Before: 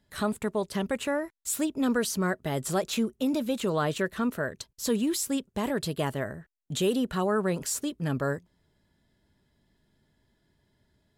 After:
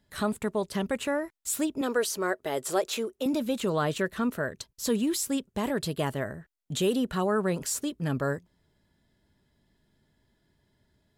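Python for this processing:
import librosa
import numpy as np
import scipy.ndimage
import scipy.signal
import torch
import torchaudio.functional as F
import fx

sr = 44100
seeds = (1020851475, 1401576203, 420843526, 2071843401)

y = fx.low_shelf_res(x, sr, hz=270.0, db=-11.5, q=1.5, at=(1.81, 3.26))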